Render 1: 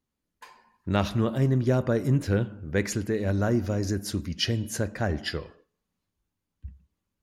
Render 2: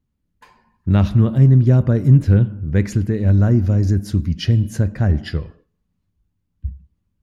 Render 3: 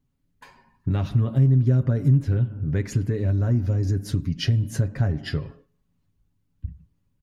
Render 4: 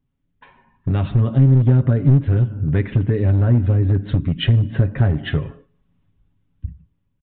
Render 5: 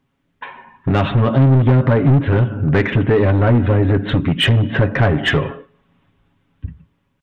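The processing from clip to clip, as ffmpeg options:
-af "bass=f=250:g=15,treble=f=4k:g=-4"
-af "acompressor=threshold=-22dB:ratio=3,aecho=1:1:7.3:0.57"
-af "aresample=8000,aeval=exprs='clip(val(0),-1,0.126)':c=same,aresample=44100,dynaudnorm=f=120:g=13:m=7dB"
-filter_complex "[0:a]asplit=2[a][b];[b]highpass=f=720:p=1,volume=24dB,asoftclip=type=tanh:threshold=-3dB[c];[a][c]amix=inputs=2:normalize=0,lowpass=f=2.5k:p=1,volume=-6dB"

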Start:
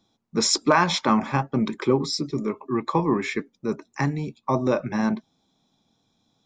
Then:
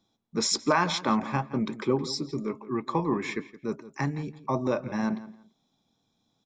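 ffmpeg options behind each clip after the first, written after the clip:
-filter_complex "[0:a]asplit=2[a][b];[b]adelay=169,lowpass=f=3.3k:p=1,volume=-16dB,asplit=2[c][d];[d]adelay=169,lowpass=f=3.3k:p=1,volume=0.23[e];[a][c][e]amix=inputs=3:normalize=0,volume=-5dB"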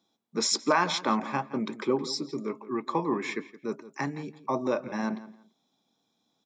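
-af "highpass=220"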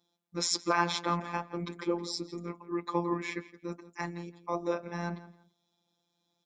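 -af "afftfilt=real='hypot(re,im)*cos(PI*b)':imag='0':win_size=1024:overlap=0.75"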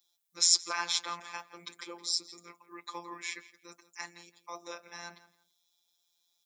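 -af "aderivative,volume=9dB"

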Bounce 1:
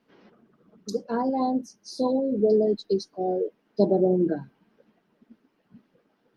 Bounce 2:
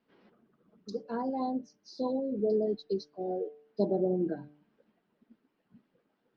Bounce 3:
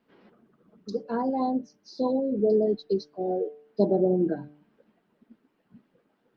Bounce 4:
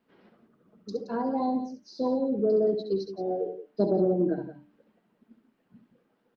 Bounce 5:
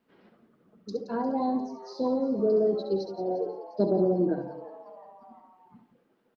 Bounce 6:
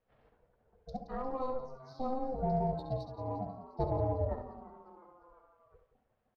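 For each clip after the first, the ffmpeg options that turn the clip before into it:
-af "lowpass=f=5.1k:w=0.5412,lowpass=f=5.1k:w=1.3066,bandreject=f=148:t=h:w=4,bandreject=f=296:t=h:w=4,bandreject=f=444:t=h:w=4,bandreject=f=592:t=h:w=4,bandreject=f=740:t=h:w=4,volume=-7.5dB"
-af "highshelf=f=4.7k:g=-5.5,volume=6dB"
-af "aecho=1:1:67.06|172:0.398|0.251,acontrast=32,volume=-7.5dB"
-filter_complex "[0:a]asplit=5[a][b][c][d][e];[b]adelay=352,afreqshift=140,volume=-18dB[f];[c]adelay=704,afreqshift=280,volume=-23.5dB[g];[d]adelay=1056,afreqshift=420,volume=-29dB[h];[e]adelay=1408,afreqshift=560,volume=-34.5dB[i];[a][f][g][h][i]amix=inputs=5:normalize=0"
-af "aeval=exprs='val(0)*sin(2*PI*260*n/s)':c=same,adynamicsmooth=sensitivity=7:basefreq=4.5k,volume=-5dB"

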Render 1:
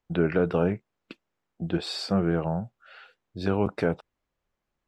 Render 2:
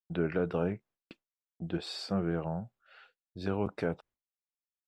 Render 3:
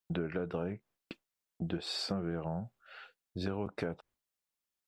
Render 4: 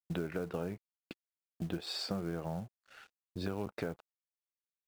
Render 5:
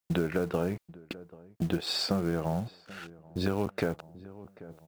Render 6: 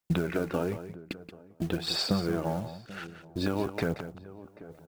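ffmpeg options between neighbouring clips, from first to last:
-af "agate=range=-33dB:threshold=-48dB:ratio=3:detection=peak,volume=-7dB"
-af "acompressor=threshold=-38dB:ratio=6,volume=5.5dB"
-af "aeval=exprs='sgn(val(0))*max(abs(val(0))-0.00141,0)':c=same,acrusher=bits=6:mode=log:mix=0:aa=0.000001,volume=-1dB"
-filter_complex "[0:a]asplit=2[a][b];[b]adelay=786,lowpass=f=1.1k:p=1,volume=-22.5dB,asplit=2[c][d];[d]adelay=786,lowpass=f=1.1k:p=1,volume=0.38,asplit=2[e][f];[f]adelay=786,lowpass=f=1.1k:p=1,volume=0.38[g];[a][c][e][g]amix=inputs=4:normalize=0,areverse,acompressor=mode=upward:threshold=-45dB:ratio=2.5,areverse,volume=8dB"
-af "aphaser=in_gain=1:out_gain=1:delay=3.6:decay=0.39:speed=1:type=sinusoidal,aecho=1:1:178:0.266"

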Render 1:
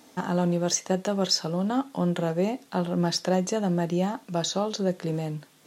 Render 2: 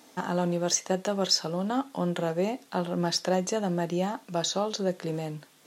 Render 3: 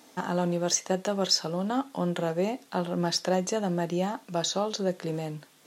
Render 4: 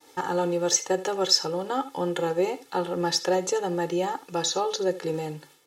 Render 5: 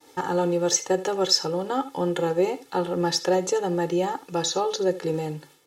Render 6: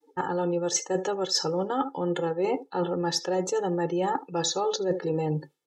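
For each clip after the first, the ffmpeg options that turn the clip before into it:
-af "lowshelf=f=210:g=-7.5"
-af anull
-af "agate=range=-33dB:threshold=-53dB:ratio=3:detection=peak,aecho=1:1:2.3:0.98,aecho=1:1:77:0.141"
-af "lowshelf=f=440:g=4.5"
-af "afftdn=nr=30:nf=-41,areverse,acompressor=threshold=-30dB:ratio=20,areverse,volume=7dB"

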